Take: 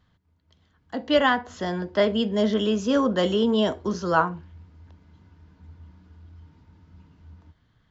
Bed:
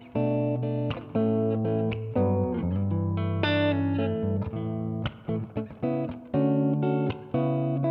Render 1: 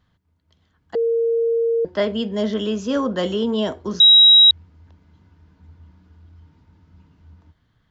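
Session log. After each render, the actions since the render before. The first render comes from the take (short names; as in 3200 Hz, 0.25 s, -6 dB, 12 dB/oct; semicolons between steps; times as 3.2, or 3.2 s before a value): 0.95–1.85 bleep 461 Hz -16 dBFS; 4–4.51 bleep 3840 Hz -6.5 dBFS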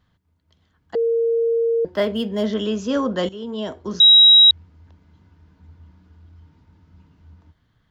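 1.57–2.46 median filter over 5 samples; 3.29–4.07 fade in, from -15.5 dB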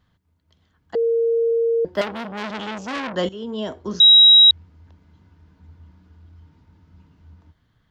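1–1.51 doubler 32 ms -14 dB; 2.01–3.16 core saturation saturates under 2800 Hz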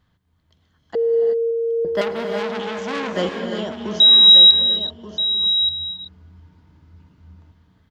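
echo 1.18 s -10 dB; non-linear reverb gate 0.4 s rising, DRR 4 dB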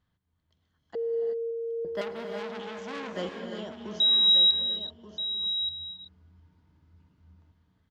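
gain -11.5 dB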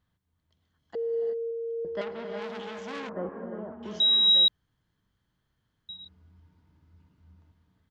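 1.3–2.42 air absorption 130 m; 3.09–3.83 inverse Chebyshev low-pass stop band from 4600 Hz, stop band 60 dB; 4.48–5.89 room tone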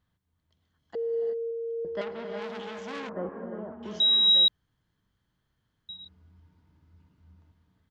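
nothing audible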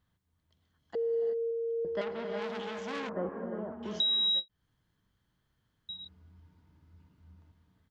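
compressor 6:1, threshold -27 dBFS, peak gain reduction 9 dB; ending taper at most 500 dB/s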